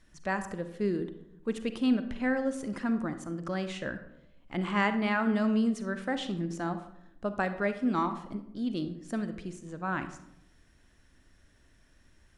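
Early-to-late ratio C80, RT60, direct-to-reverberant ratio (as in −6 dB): 13.5 dB, 0.80 s, 9.5 dB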